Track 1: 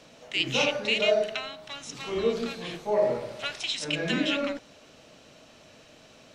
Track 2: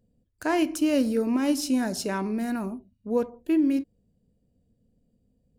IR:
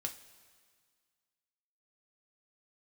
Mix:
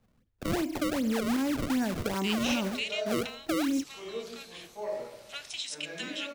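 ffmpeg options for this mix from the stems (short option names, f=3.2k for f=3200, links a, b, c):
-filter_complex "[0:a]aemphasis=mode=production:type=bsi,adelay=1900,volume=-10dB[a];[1:a]alimiter=limit=-19.5dB:level=0:latency=1:release=29,acrusher=samples=30:mix=1:aa=0.000001:lfo=1:lforange=48:lforate=2.6,acrossover=split=210[b][c];[c]acompressor=threshold=-29dB:ratio=2[d];[b][d]amix=inputs=2:normalize=0,volume=-0.5dB[e];[a][e]amix=inputs=2:normalize=0"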